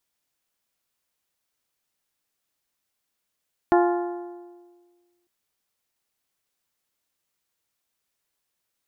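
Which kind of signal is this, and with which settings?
struck metal bell, lowest mode 350 Hz, modes 6, decay 1.60 s, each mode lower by 3.5 dB, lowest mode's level −15 dB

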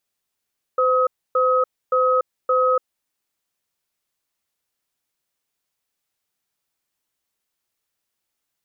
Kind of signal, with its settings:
tone pair in a cadence 512 Hz, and 1,270 Hz, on 0.29 s, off 0.28 s, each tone −17.5 dBFS 2.11 s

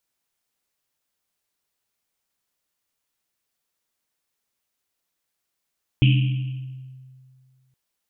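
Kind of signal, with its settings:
drum after Risset length 1.72 s, pitch 130 Hz, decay 2.08 s, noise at 2,800 Hz, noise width 720 Hz, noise 15%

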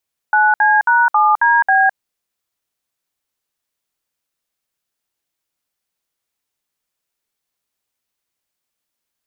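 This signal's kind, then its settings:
touch tones "9C#7DB", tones 210 ms, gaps 61 ms, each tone −12 dBFS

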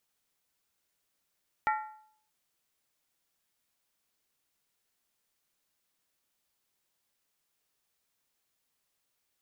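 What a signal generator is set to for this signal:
struck skin, lowest mode 861 Hz, decay 0.62 s, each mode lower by 4 dB, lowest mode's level −24 dB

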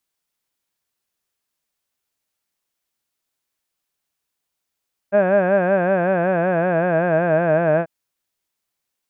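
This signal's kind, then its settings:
vowel from formants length 2.74 s, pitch 195 Hz, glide −3.5 semitones, vibrato depth 1.1 semitones, F1 620 Hz, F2 1,600 Hz, F3 2,500 Hz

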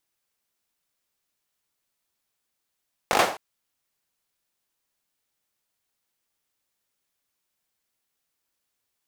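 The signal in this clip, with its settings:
synth clap length 0.26 s, bursts 5, apart 20 ms, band 710 Hz, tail 0.40 s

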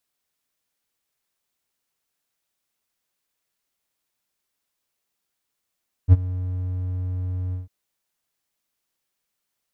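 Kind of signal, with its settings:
note with an ADSR envelope triangle 91.4 Hz, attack 46 ms, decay 30 ms, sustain −18.5 dB, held 1.45 s, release 150 ms −3.5 dBFS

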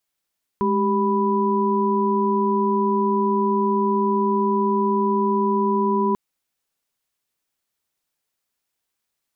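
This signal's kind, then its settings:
held notes G#3/G4/B5 sine, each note −21.5 dBFS 5.54 s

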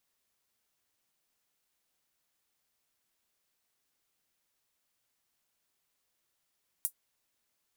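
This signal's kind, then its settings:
closed synth hi-hat, high-pass 9,500 Hz, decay 0.09 s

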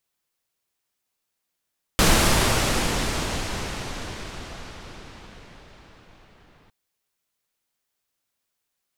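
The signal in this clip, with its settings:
filter sweep on noise pink, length 4.71 s lowpass, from 12,000 Hz, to 3,000 Hz, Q 0.71, exponential, gain ramp −39.5 dB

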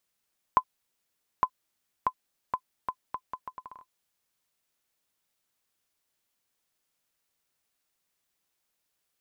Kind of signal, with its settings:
bouncing ball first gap 0.86 s, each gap 0.74, 1,020 Hz, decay 67 ms −9 dBFS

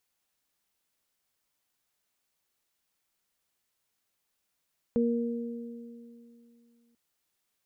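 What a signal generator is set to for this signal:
harmonic partials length 1.99 s, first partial 235 Hz, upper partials −2 dB, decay 2.78 s, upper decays 2.26 s, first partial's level −23.5 dB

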